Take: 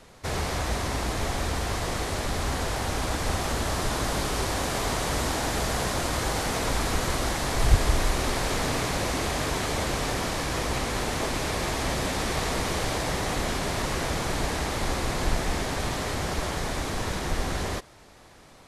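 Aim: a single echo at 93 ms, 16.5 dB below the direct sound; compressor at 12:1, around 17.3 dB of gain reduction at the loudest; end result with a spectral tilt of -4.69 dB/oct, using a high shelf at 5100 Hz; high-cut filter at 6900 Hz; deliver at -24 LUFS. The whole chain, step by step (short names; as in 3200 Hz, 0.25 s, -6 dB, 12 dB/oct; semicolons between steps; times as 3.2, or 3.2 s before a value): LPF 6900 Hz; high shelf 5100 Hz -6 dB; compressor 12:1, threshold -29 dBFS; echo 93 ms -16.5 dB; gain +10 dB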